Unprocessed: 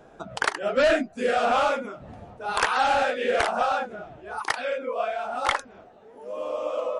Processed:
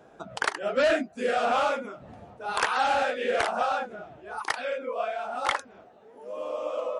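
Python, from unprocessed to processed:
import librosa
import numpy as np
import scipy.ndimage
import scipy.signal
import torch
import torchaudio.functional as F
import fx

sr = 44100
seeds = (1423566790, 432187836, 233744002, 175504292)

y = fx.highpass(x, sr, hz=97.0, slope=6)
y = y * 10.0 ** (-2.5 / 20.0)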